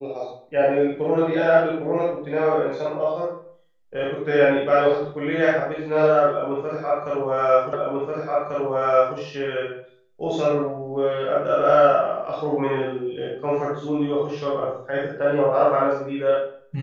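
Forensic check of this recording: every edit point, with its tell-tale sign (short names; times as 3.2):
7.73 repeat of the last 1.44 s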